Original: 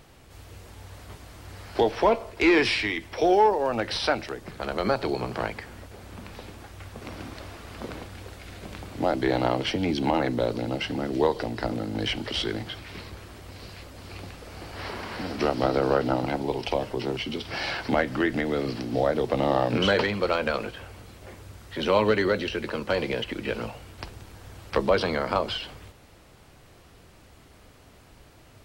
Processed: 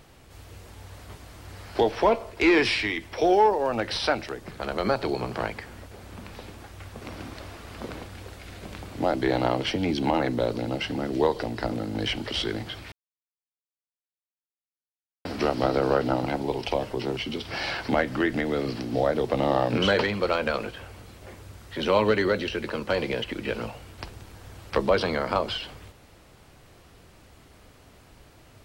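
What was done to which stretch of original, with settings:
12.92–15.25 s: mute

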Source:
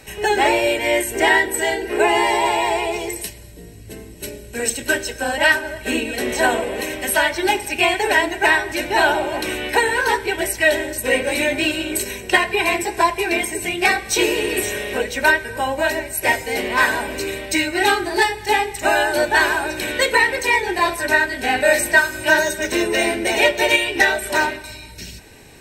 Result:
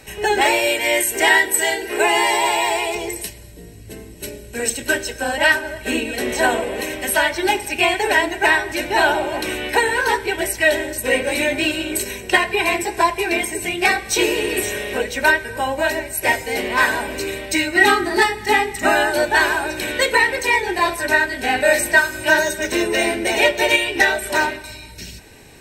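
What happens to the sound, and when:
0.41–2.95 s: tilt EQ +2 dB/octave
17.76–19.10 s: small resonant body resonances 230/1300/1900 Hz, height 12 dB

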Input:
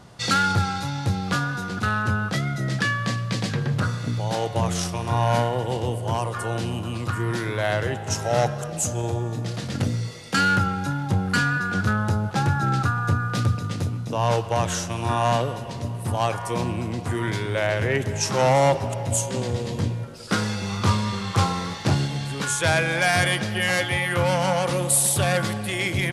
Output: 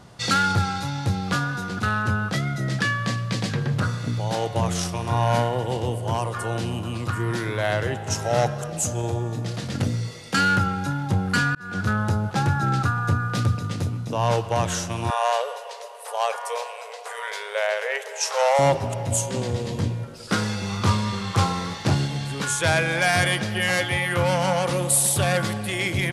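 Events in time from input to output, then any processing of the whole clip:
11.55–12.03 s: fade in equal-power
15.10–18.59 s: brick-wall FIR high-pass 420 Hz

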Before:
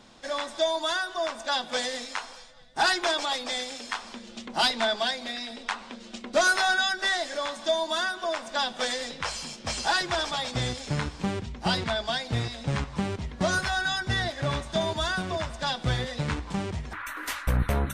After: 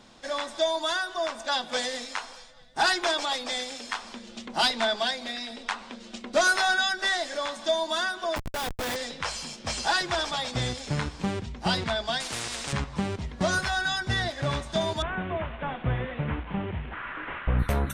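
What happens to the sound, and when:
8.36–8.96 s: Schmitt trigger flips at -31 dBFS
12.20–12.73 s: spectrum-flattening compressor 4:1
15.02–17.59 s: one-bit delta coder 16 kbps, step -36.5 dBFS

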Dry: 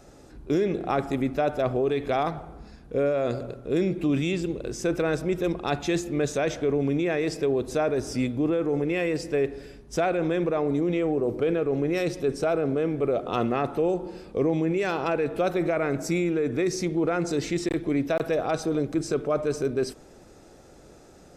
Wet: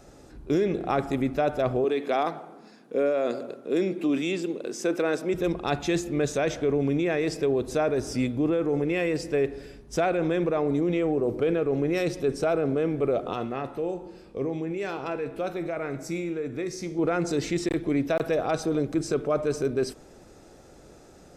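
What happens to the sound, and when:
1.84–5.34 s: high-pass 210 Hz 24 dB/octave
13.33–16.99 s: feedback comb 67 Hz, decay 0.6 s

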